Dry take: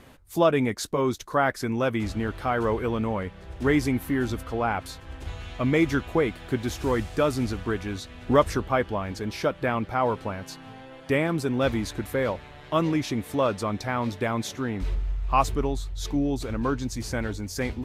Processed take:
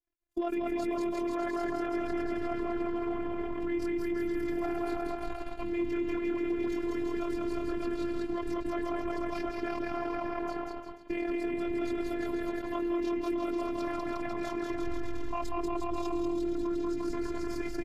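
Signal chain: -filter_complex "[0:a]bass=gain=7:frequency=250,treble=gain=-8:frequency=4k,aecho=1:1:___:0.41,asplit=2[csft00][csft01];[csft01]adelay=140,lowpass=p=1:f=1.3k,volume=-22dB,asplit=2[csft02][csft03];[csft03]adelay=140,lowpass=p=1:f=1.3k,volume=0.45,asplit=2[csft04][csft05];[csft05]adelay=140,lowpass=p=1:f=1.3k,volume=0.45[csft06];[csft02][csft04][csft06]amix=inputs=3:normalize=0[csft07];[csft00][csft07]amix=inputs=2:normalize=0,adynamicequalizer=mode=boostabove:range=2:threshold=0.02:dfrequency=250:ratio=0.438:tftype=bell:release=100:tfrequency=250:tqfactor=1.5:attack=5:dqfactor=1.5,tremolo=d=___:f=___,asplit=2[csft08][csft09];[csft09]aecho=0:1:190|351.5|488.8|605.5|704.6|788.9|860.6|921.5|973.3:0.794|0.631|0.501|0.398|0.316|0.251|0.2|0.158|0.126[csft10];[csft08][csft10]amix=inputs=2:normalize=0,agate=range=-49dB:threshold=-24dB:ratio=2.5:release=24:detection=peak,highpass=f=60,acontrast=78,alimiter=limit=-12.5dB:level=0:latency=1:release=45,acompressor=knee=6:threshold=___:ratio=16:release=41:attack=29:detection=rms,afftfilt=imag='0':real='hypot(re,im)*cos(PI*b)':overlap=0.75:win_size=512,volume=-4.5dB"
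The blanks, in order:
2.5, 0.621, 40, -23dB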